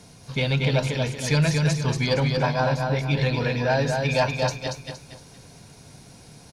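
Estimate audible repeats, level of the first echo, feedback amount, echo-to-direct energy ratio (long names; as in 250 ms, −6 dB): 4, −4.0 dB, 35%, −3.5 dB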